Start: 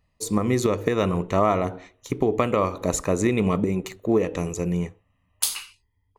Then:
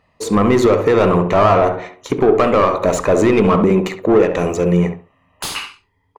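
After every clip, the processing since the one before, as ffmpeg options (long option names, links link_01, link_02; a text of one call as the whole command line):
ffmpeg -i in.wav -filter_complex "[0:a]asplit=2[link_01][link_02];[link_02]highpass=frequency=720:poles=1,volume=25dB,asoftclip=type=tanh:threshold=-3.5dB[link_03];[link_01][link_03]amix=inputs=2:normalize=0,lowpass=frequency=1100:poles=1,volume=-6dB,asplit=2[link_04][link_05];[link_05]adelay=68,lowpass=frequency=1200:poles=1,volume=-5.5dB,asplit=2[link_06][link_07];[link_07]adelay=68,lowpass=frequency=1200:poles=1,volume=0.23,asplit=2[link_08][link_09];[link_09]adelay=68,lowpass=frequency=1200:poles=1,volume=0.23[link_10];[link_04][link_06][link_08][link_10]amix=inputs=4:normalize=0,volume=1.5dB" out.wav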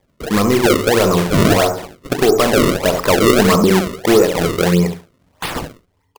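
ffmpeg -i in.wav -af "dynaudnorm=framelen=590:gausssize=3:maxgain=11.5dB,acrusher=samples=31:mix=1:aa=0.000001:lfo=1:lforange=49.6:lforate=1.6,volume=-1dB" out.wav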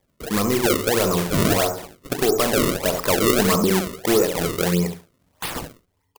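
ffmpeg -i in.wav -af "highshelf=frequency=6500:gain=9,volume=-7dB" out.wav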